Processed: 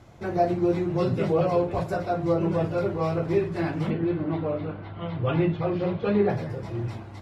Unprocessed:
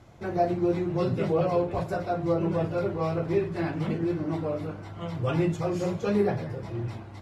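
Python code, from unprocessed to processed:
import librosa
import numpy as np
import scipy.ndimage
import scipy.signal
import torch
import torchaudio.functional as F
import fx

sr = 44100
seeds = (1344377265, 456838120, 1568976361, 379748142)

y = fx.steep_lowpass(x, sr, hz=4000.0, slope=36, at=(3.9, 6.3))
y = y * librosa.db_to_amplitude(2.0)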